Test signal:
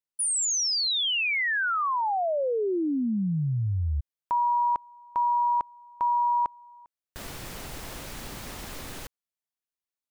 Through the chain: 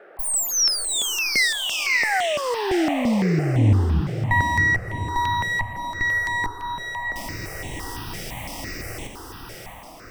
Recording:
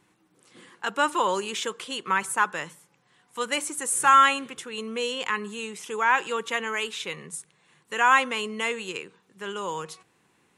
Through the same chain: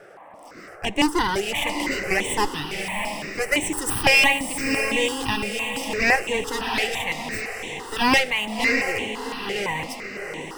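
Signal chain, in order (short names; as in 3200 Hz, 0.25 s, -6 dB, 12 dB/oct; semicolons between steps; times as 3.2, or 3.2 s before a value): minimum comb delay 0.36 ms; thirty-one-band EQ 100 Hz +8 dB, 315 Hz +7 dB, 800 Hz +7 dB, 2000 Hz +8 dB, 5000 Hz +5 dB; band noise 300–1500 Hz -48 dBFS; diffused feedback echo 0.668 s, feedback 45%, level -6 dB; step phaser 5.9 Hz 270–4900 Hz; gain +6 dB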